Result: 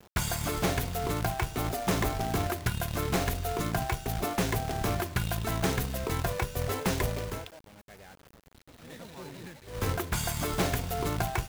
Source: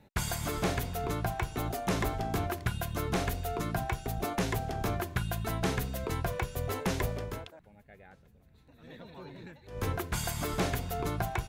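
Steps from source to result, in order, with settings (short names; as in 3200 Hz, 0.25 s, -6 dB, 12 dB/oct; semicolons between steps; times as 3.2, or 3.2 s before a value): companded quantiser 4-bit; gain +2 dB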